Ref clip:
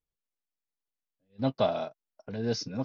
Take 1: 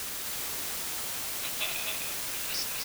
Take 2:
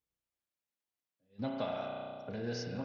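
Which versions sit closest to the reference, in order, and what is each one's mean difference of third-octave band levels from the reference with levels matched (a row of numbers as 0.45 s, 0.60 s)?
2, 1; 5.5 dB, 20.5 dB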